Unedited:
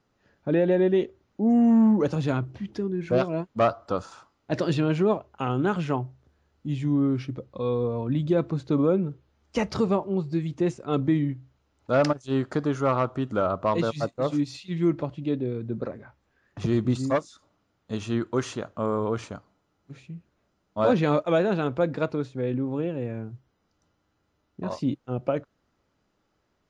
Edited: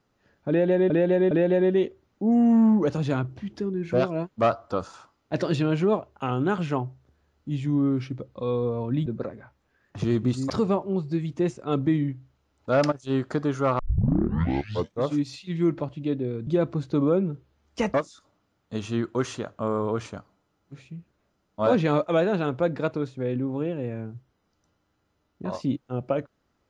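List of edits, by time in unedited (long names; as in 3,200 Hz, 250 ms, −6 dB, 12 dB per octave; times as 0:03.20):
0:00.49–0:00.90: repeat, 3 plays
0:08.24–0:09.71: swap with 0:15.68–0:17.12
0:13.00: tape start 1.29 s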